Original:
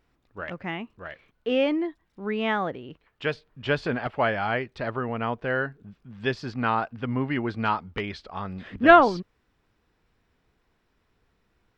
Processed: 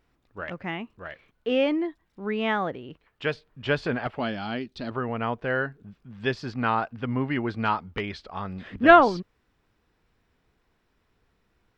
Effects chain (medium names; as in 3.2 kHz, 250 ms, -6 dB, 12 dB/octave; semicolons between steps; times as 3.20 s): 4.19–4.91 s: graphic EQ 125/250/500/1000/2000/4000 Hz -7/+8/-8/-6/-10/+8 dB